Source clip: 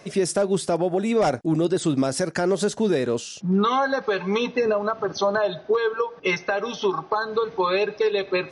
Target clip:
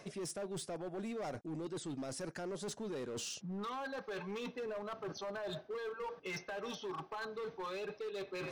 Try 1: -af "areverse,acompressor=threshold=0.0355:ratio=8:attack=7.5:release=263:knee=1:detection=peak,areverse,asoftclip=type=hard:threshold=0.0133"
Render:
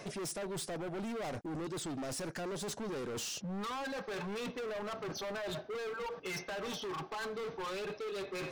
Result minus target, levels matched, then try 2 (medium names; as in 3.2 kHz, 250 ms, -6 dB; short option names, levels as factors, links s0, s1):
compression: peak gain reduction -8 dB
-af "areverse,acompressor=threshold=0.0126:ratio=8:attack=7.5:release=263:knee=1:detection=peak,areverse,asoftclip=type=hard:threshold=0.0133"